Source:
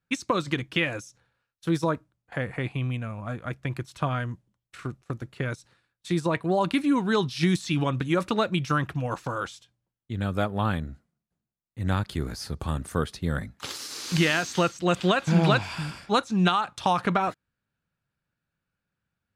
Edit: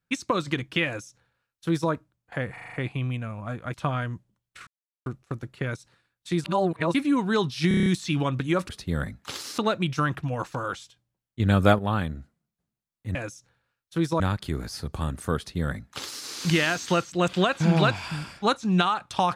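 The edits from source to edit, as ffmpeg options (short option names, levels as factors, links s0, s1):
-filter_complex "[0:a]asplit=22[s0][s1][s2][s3][s4][s5][s6][s7][s8][s9][s10][s11][s12][s13][s14][s15][s16][s17][s18][s19][s20][s21];[s0]atrim=end=2.572[s22];[s1]atrim=start=2.528:end=2.572[s23];[s2]atrim=start=2.528:end=2.572[s24];[s3]atrim=start=2.528:end=2.572[s25];[s4]atrim=start=2.528:end=2.572[s26];[s5]atrim=start=2.528:end=3.542[s27];[s6]atrim=start=3.918:end=4.85,asetpts=PTS-STARTPTS,afade=t=out:st=0.928:d=0.004:c=hsin,apad=pad_dur=0.39[s28];[s7]atrim=start=4.85:end=6.232,asetpts=PTS-STARTPTS,afade=t=in:d=0.004:c=hsin[s29];[s8]atrim=start=6.228:end=6.732,asetpts=PTS-STARTPTS,areverse[s30];[s9]atrim=start=6.728:end=7.502[s31];[s10]atrim=start=7.468:end=7.502[s32];[s11]atrim=start=7.468:end=7.502[s33];[s12]atrim=start=7.468:end=7.502[s34];[s13]atrim=start=7.468:end=7.502[s35];[s14]atrim=start=7.468:end=7.502[s36];[s15]atrim=start=7.468:end=8.302[s37];[s16]atrim=start=13.038:end=13.932[s38];[s17]atrim=start=8.298:end=10.122[s39];[s18]atrim=start=10.118:end=10.512,asetpts=PTS-STARTPTS,volume=2.51[s40];[s19]atrim=start=10.508:end=11.872[s41];[s20]atrim=start=0.858:end=1.912[s42];[s21]atrim=start=11.868[s43];[s22][s23]acrossfade=d=0.004:c1=hsin:c2=hsin[s44];[s44][s24]acrossfade=d=0.004:c1=hsin:c2=hsin[s45];[s45][s25]acrossfade=d=0.004:c1=hsin:c2=hsin[s46];[s46][s26]acrossfade=d=0.004:c1=hsin:c2=hsin[s47];[s47][s27]acrossfade=d=0.004:c1=hsin:c2=hsin[s48];[s28][s29]concat=n=2:v=0:a=1[s49];[s48][s49]acrossfade=d=0.004:c1=hsin:c2=hsin[s50];[s50][s30]acrossfade=d=0.004:c1=hsin:c2=hsin[s51];[s51][s31]acrossfade=d=0.004:c1=hsin:c2=hsin[s52];[s52][s32]acrossfade=d=0.004:c1=hsin:c2=hsin[s53];[s53][s33]acrossfade=d=0.004:c1=hsin:c2=hsin[s54];[s54][s34]acrossfade=d=0.004:c1=hsin:c2=hsin[s55];[s55][s35]acrossfade=d=0.004:c1=hsin:c2=hsin[s56];[s56][s36]acrossfade=d=0.004:c1=hsin:c2=hsin[s57];[s57][s37]acrossfade=d=0.004:c1=hsin:c2=hsin[s58];[s58][s38]acrossfade=d=0.004:c1=hsin:c2=hsin[s59];[s59][s39]acrossfade=d=0.004:c1=hsin:c2=hsin[s60];[s60][s40]acrossfade=d=0.004:c1=hsin:c2=hsin[s61];[s61][s41]acrossfade=d=0.004:c1=hsin:c2=hsin[s62];[s62][s42]acrossfade=d=0.004:c1=hsin:c2=hsin[s63];[s63][s43]acrossfade=d=0.004:c1=hsin:c2=hsin"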